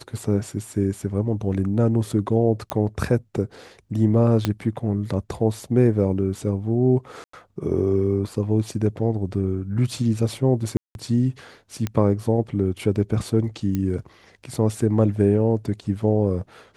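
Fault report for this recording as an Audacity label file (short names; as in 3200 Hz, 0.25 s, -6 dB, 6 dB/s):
2.700000	2.700000	pop -10 dBFS
4.450000	4.450000	pop -7 dBFS
7.240000	7.330000	gap 94 ms
10.770000	10.950000	gap 0.181 s
11.870000	11.870000	pop -12 dBFS
13.750000	13.750000	pop -13 dBFS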